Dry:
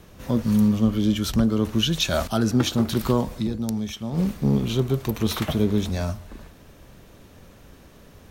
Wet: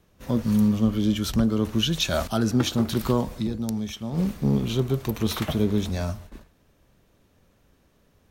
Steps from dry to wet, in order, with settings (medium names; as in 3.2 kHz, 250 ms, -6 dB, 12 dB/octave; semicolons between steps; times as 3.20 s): gate -39 dBFS, range -12 dB; trim -1.5 dB